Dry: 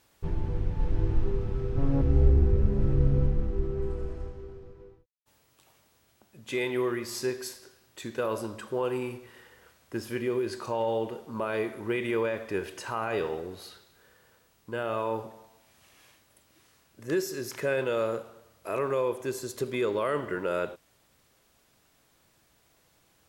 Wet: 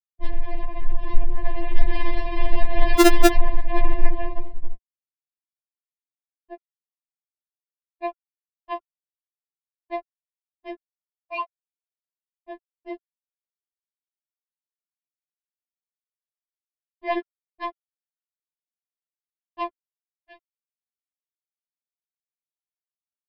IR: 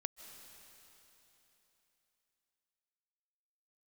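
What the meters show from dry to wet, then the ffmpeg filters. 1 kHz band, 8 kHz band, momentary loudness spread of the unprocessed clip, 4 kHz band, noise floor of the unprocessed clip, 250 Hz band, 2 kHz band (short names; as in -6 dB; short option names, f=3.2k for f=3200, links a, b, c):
+5.5 dB, +4.5 dB, 14 LU, +6.0 dB, -66 dBFS, +3.5 dB, +3.5 dB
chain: -filter_complex "[0:a]acompressor=threshold=-40dB:ratio=2.5,lowshelf=f=220:t=q:w=3:g=7,aecho=1:1:131|262:0.1|0.026,afftfilt=real='re*gte(hypot(re,im),0.178)':imag='im*gte(hypot(re,im),0.178)':win_size=1024:overlap=0.75,asplit=2[a][b];[b]adelay=29,volume=-10dB[c];[a][c]amix=inputs=2:normalize=0,aresample=11025,aeval=exprs='sgn(val(0))*max(abs(val(0))-0.00178,0)':c=same,aresample=44100,asuperstop=centerf=1400:order=12:qfactor=6.7,dynaudnorm=f=200:g=21:m=10dB,acrossover=split=480 3700:gain=0.141 1 0.158[d][e][f];[d][e][f]amix=inputs=3:normalize=0,aeval=exprs='(mod(17.8*val(0)+1,2)-1)/17.8':c=same,alimiter=level_in=30dB:limit=-1dB:release=50:level=0:latency=1,afftfilt=real='re*4*eq(mod(b,16),0)':imag='im*4*eq(mod(b,16),0)':win_size=2048:overlap=0.75,volume=4dB"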